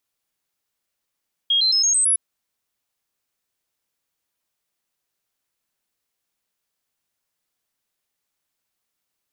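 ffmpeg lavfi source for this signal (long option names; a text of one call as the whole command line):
ffmpeg -f lavfi -i "aevalsrc='0.178*clip(min(mod(t,0.11),0.11-mod(t,0.11))/0.005,0,1)*sin(2*PI*3260*pow(2,floor(t/0.11)/3)*mod(t,0.11))':duration=0.66:sample_rate=44100" out.wav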